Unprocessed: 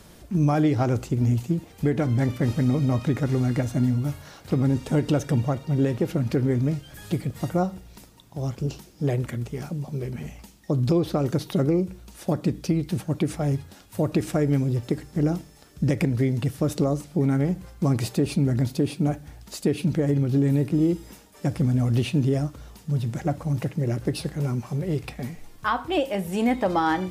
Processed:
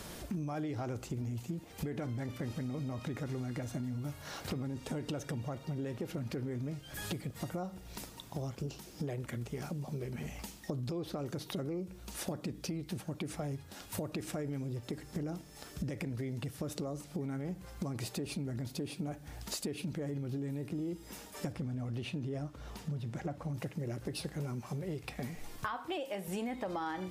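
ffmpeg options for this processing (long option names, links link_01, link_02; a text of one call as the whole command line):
ffmpeg -i in.wav -filter_complex "[0:a]asettb=1/sr,asplit=3[link_01][link_02][link_03];[link_01]atrim=end=21.524[link_04];[link_02]atrim=start=21.52:end=23.54,asetpts=PTS-STARTPTS,afade=type=in:duration=0.004:curve=qsin,afade=type=out:start_time=2.016:duration=0.004:curve=qsin,highshelf=frequency=6000:gain=-10.5[link_05];[link_03]atrim=start=23.536[link_06];[link_04][link_05]acrossfade=duration=0.004:curve1=hsin:curve2=qsin[link_07];[link_07][link_06]acrossfade=duration=0.004:curve1=qsin:curve2=hsin,asettb=1/sr,asplit=3[link_08][link_09][link_10];[link_08]atrim=end=25.744[link_11];[link_09]atrim=start=25.74:end=26.28,asetpts=PTS-STARTPTS,afade=type=in:duration=0.004:curve=qsin,afade=type=out:start_time=0.536:duration=0.004:curve=qsin,highpass=frequency=210:poles=1[link_12];[link_10]atrim=start=26.276[link_13];[link_11][link_12]acrossfade=duration=0.004:curve1=hsin:curve2=qsin[link_14];[link_14][link_13]acrossfade=duration=0.004:curve1=qsin:curve2=hsin,alimiter=limit=-17dB:level=0:latency=1:release=23,lowshelf=frequency=270:gain=-5,acompressor=threshold=-41dB:ratio=6,volume=4.5dB" out.wav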